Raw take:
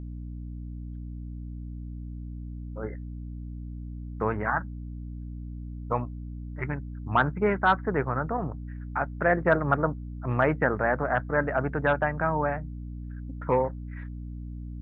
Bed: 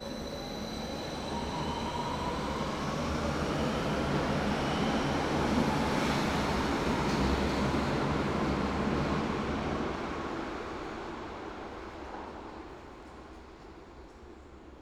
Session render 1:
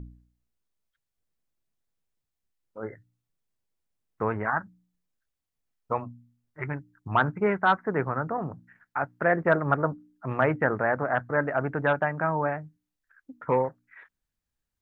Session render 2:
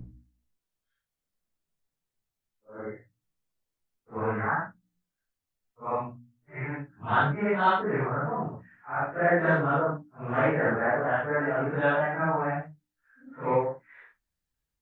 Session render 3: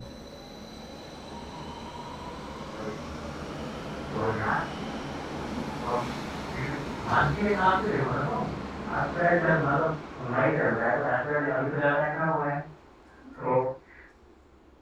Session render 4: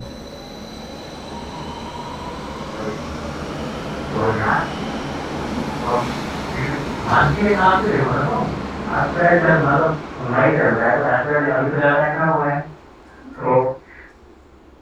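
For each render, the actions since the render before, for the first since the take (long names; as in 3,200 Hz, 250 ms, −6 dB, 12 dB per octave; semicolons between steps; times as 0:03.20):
hum removal 60 Hz, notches 5
random phases in long frames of 200 ms
mix in bed −5.5 dB
level +9.5 dB; brickwall limiter −3 dBFS, peak gain reduction 2 dB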